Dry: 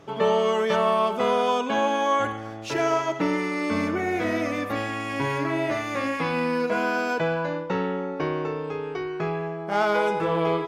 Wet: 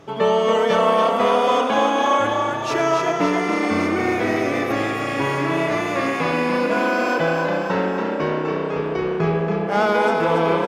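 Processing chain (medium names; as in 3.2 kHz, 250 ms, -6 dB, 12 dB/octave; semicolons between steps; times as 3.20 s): 8.76–9.67 s: bass shelf 230 Hz +9.5 dB; frequency-shifting echo 281 ms, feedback 60%, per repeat +31 Hz, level -5 dB; trim +3.5 dB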